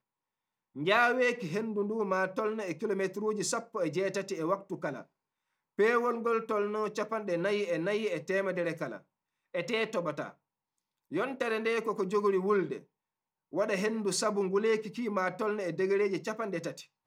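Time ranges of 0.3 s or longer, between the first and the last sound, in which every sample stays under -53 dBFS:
5.04–5.78 s
9.01–9.54 s
10.33–11.11 s
12.84–13.53 s

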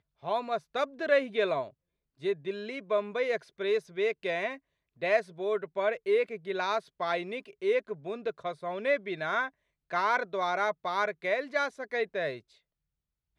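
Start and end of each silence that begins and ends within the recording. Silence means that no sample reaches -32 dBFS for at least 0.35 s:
1.63–2.25 s
4.53–5.03 s
9.47–9.93 s

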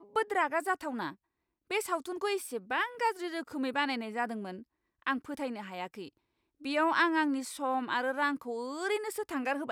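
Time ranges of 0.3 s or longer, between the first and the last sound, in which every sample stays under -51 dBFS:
1.14–1.70 s
4.63–5.02 s
6.09–6.61 s

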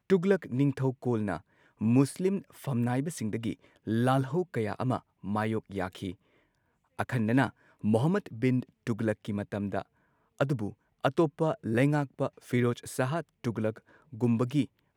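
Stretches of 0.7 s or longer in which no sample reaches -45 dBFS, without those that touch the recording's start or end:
6.14–6.99 s

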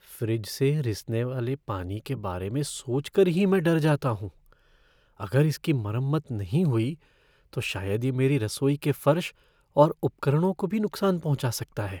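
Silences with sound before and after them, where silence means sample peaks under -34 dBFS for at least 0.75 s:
4.28–5.20 s

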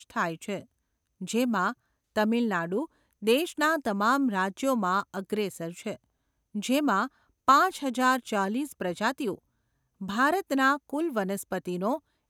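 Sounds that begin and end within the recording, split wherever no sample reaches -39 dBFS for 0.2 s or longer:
1.21–1.73 s
2.16–2.85 s
3.22–5.95 s
6.55–7.07 s
7.48–9.35 s
10.01–11.98 s

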